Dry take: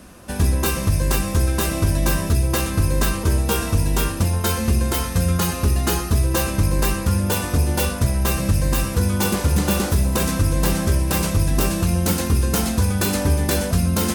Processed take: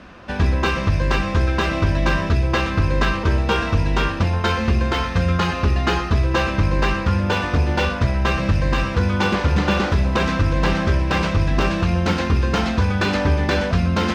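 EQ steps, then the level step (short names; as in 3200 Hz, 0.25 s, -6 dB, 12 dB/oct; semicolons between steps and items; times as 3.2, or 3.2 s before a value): LPF 2900 Hz 6 dB/oct; air absorption 210 m; tilt shelf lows -6 dB, about 900 Hz; +6.0 dB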